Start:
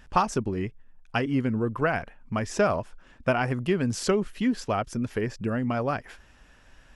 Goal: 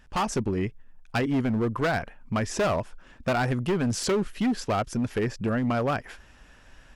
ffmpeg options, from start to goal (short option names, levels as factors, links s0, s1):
-af "volume=14.1,asoftclip=hard,volume=0.0708,dynaudnorm=f=110:g=3:m=2.11,volume=0.631"